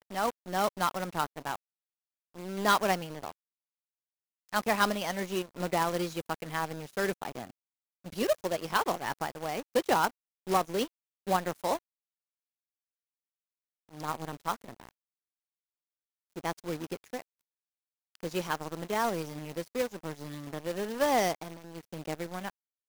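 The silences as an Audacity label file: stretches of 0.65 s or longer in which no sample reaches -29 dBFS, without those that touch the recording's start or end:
1.550000	2.570000	silence
3.290000	4.540000	silence
7.400000	8.180000	silence
11.760000	14.000000	silence
14.540000	16.450000	silence
17.190000	18.240000	silence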